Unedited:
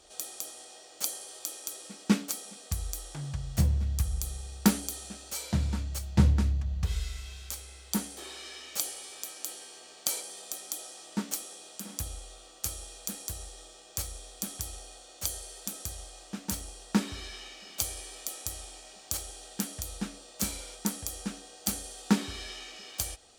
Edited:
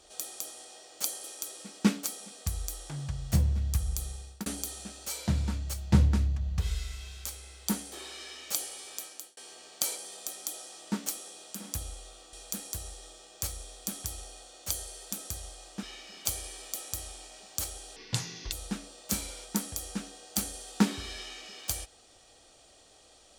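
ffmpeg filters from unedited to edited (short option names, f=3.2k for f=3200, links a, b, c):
-filter_complex "[0:a]asplit=8[a][b][c][d][e][f][g][h];[a]atrim=end=1.242[i];[b]atrim=start=1.488:end=4.71,asetpts=PTS-STARTPTS,afade=t=out:st=2.772:d=0.45:c=qsin[j];[c]atrim=start=4.71:end=9.62,asetpts=PTS-STARTPTS,afade=t=in:d=0.004:c=hsin,afade=t=out:st=4.55:d=0.36[k];[d]atrim=start=9.62:end=12.582,asetpts=PTS-STARTPTS,afade=t=in:d=0.004:c=hsin[l];[e]atrim=start=12.878:end=16.382[m];[f]atrim=start=17.358:end=19.494[n];[g]atrim=start=19.49:end=19.83,asetpts=PTS-STARTPTS,asetrate=26460,aresample=44100[o];[h]atrim=start=19.826[p];[j][k][l]concat=n=3:v=0:a=1[q];[i][q]acrossfade=d=0.004:c1=hsin:c2=hsin[r];[r][m]acrossfade=d=0.004:c1=hsin:c2=hsin[s];[s][n]acrossfade=d=0.004:c1=hsin:c2=hsin[t];[t][o]acrossfade=d=0.004:c1=hsin:c2=hsin[u];[u][p]acrossfade=d=0.004:c1=hsin:c2=hsin"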